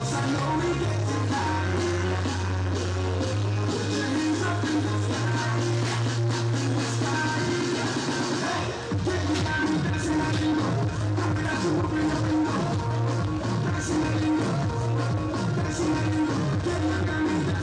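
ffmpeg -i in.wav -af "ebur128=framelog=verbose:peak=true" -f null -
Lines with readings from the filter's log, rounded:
Integrated loudness:
  I:         -26.0 LUFS
  Threshold: -36.0 LUFS
Loudness range:
  LRA:         1.0 LU
  Threshold: -46.0 LUFS
  LRA low:   -26.5 LUFS
  LRA high:  -25.5 LUFS
True peak:
  Peak:      -14.8 dBFS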